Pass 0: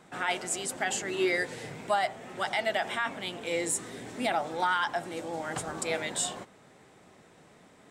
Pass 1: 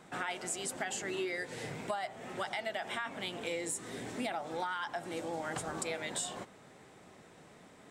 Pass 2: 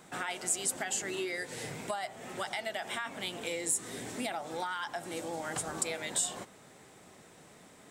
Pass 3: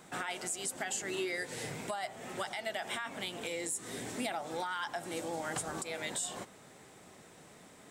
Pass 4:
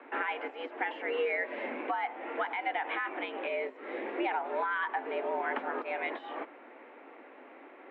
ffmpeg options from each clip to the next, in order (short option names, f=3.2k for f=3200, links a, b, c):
-af "acompressor=threshold=-34dB:ratio=6"
-af "highshelf=f=6k:g=11"
-af "alimiter=level_in=1dB:limit=-24dB:level=0:latency=1:release=166,volume=-1dB"
-af "highpass=f=160:t=q:w=0.5412,highpass=f=160:t=q:w=1.307,lowpass=f=2.5k:t=q:w=0.5176,lowpass=f=2.5k:t=q:w=0.7071,lowpass=f=2.5k:t=q:w=1.932,afreqshift=100,volume=5.5dB"